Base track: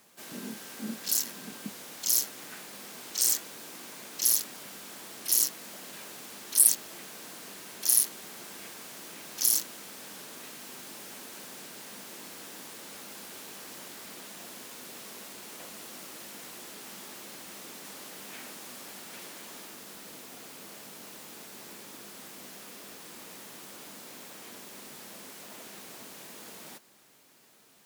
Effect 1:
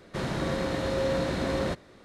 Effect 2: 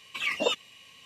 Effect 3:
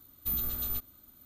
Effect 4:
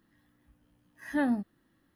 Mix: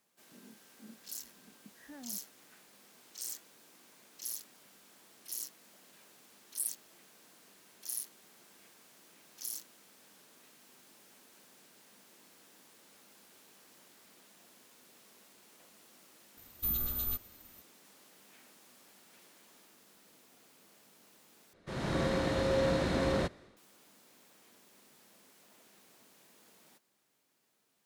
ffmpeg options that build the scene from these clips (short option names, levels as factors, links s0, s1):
-filter_complex "[0:a]volume=0.158[s0];[4:a]alimiter=level_in=1.33:limit=0.0631:level=0:latency=1:release=71,volume=0.75[s1];[1:a]dynaudnorm=f=110:g=5:m=3.16[s2];[s0]asplit=2[s3][s4];[s3]atrim=end=21.534[s5];[s2]atrim=end=2.04,asetpts=PTS-STARTPTS,volume=0.251[s6];[s4]atrim=start=23.566[s7];[s1]atrim=end=1.95,asetpts=PTS-STARTPTS,volume=0.158,afade=t=in:d=0.004:c=hsin,afade=t=out:st=1.946:d=0.004:c=hsin,adelay=750[s8];[3:a]atrim=end=1.25,asetpts=PTS-STARTPTS,volume=0.841,afade=t=in:d=0.004:c=hsin,afade=t=out:st=1.246:d=0.004:c=hsin,adelay=16370[s9];[s5][s6]acrossfade=d=0.004:c1=hsin:c2=hsin[s10];[s10][s7]acrossfade=d=0.004:c1=hsin:c2=hsin[s11];[s11][s8][s9]amix=inputs=3:normalize=0"